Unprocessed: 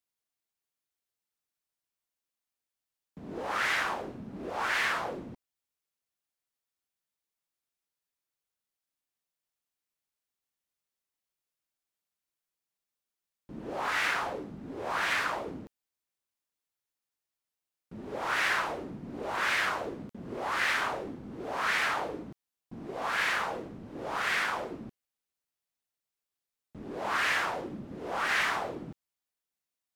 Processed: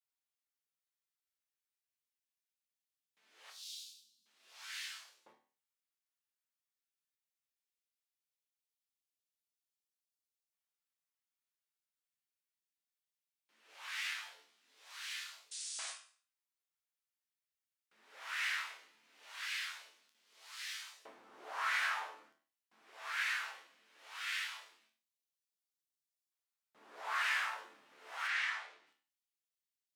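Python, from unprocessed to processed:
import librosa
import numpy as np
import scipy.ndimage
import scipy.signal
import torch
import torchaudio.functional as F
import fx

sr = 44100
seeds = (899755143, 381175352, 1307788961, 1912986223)

p1 = fx.rider(x, sr, range_db=5, speed_s=0.5)
p2 = x + (p1 * librosa.db_to_amplitude(-1.0))
p3 = fx.ellip_bandstop(p2, sr, low_hz=230.0, high_hz=4000.0, order=3, stop_db=40, at=(3.5, 4.26))
p4 = fx.air_absorb(p3, sr, metres=68.0, at=(28.27, 28.87))
p5 = p4 + fx.echo_single(p4, sr, ms=99, db=-23.0, dry=0)
p6 = fx.spec_paint(p5, sr, seeds[0], shape='noise', start_s=15.51, length_s=0.47, low_hz=480.0, high_hz=9800.0, level_db=-32.0)
p7 = fx.resonator_bank(p6, sr, root=38, chord='minor', decay_s=0.37)
p8 = fx.filter_lfo_highpass(p7, sr, shape='saw_up', hz=0.19, low_hz=900.0, high_hz=4700.0, q=0.98)
p9 = fx.end_taper(p8, sr, db_per_s=130.0)
y = p9 * librosa.db_to_amplitude(1.0)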